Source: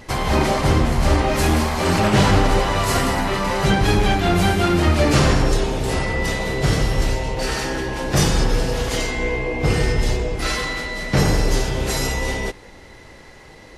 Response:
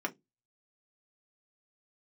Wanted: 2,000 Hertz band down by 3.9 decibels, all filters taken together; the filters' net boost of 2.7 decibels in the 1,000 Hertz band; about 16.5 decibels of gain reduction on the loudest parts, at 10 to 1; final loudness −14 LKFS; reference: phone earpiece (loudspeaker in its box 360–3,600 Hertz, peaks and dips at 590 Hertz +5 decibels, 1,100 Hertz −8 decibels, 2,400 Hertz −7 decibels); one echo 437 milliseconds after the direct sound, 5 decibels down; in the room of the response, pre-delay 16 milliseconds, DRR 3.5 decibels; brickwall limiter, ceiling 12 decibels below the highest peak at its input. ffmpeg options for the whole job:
-filter_complex "[0:a]equalizer=frequency=1000:width_type=o:gain=7,equalizer=frequency=2000:width_type=o:gain=-4,acompressor=threshold=-28dB:ratio=10,alimiter=level_in=5dB:limit=-24dB:level=0:latency=1,volume=-5dB,aecho=1:1:437:0.562,asplit=2[link_01][link_02];[1:a]atrim=start_sample=2205,adelay=16[link_03];[link_02][link_03]afir=irnorm=-1:irlink=0,volume=-8dB[link_04];[link_01][link_04]amix=inputs=2:normalize=0,highpass=360,equalizer=frequency=590:width_type=q:width=4:gain=5,equalizer=frequency=1100:width_type=q:width=4:gain=-8,equalizer=frequency=2400:width_type=q:width=4:gain=-7,lowpass=frequency=3600:width=0.5412,lowpass=frequency=3600:width=1.3066,volume=24.5dB"

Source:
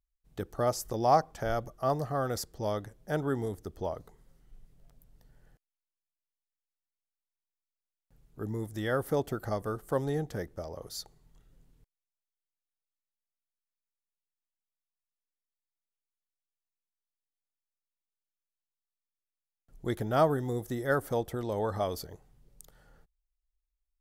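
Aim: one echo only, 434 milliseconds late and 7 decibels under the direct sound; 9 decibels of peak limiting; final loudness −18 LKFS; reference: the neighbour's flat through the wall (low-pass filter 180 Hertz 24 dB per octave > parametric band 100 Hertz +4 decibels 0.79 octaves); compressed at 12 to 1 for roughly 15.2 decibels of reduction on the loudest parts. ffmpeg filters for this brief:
ffmpeg -i in.wav -af "acompressor=threshold=-34dB:ratio=12,alimiter=level_in=8.5dB:limit=-24dB:level=0:latency=1,volume=-8.5dB,lowpass=frequency=180:width=0.5412,lowpass=frequency=180:width=1.3066,equalizer=frequency=100:width_type=o:width=0.79:gain=4,aecho=1:1:434:0.447,volume=28.5dB" out.wav

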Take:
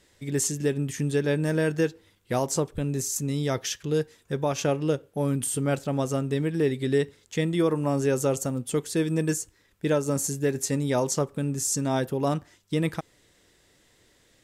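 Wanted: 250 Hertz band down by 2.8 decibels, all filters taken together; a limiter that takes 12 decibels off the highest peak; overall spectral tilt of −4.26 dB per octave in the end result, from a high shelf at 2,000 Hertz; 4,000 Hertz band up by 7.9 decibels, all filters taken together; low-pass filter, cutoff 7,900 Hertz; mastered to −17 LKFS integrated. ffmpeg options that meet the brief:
ffmpeg -i in.wav -af "lowpass=7900,equalizer=frequency=250:width_type=o:gain=-4,highshelf=frequency=2000:gain=3.5,equalizer=frequency=4000:width_type=o:gain=7,volume=15dB,alimiter=limit=-8dB:level=0:latency=1" out.wav

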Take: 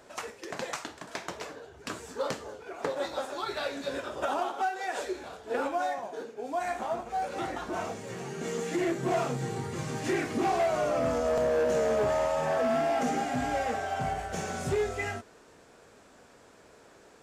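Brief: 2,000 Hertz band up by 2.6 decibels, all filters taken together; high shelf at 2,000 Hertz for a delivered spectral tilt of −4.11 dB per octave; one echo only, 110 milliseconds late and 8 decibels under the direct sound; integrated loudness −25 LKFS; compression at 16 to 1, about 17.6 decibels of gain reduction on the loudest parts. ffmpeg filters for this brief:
ffmpeg -i in.wav -af "highshelf=frequency=2000:gain=-7.5,equalizer=frequency=2000:width_type=o:gain=7.5,acompressor=threshold=-42dB:ratio=16,aecho=1:1:110:0.398,volume=20.5dB" out.wav

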